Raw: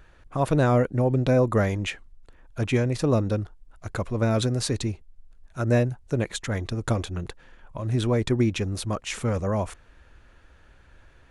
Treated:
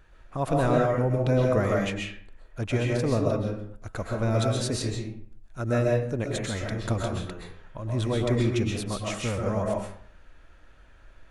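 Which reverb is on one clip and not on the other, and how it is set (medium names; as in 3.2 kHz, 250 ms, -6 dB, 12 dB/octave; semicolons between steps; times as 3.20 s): algorithmic reverb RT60 0.59 s, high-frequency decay 0.65×, pre-delay 90 ms, DRR -1.5 dB; trim -4.5 dB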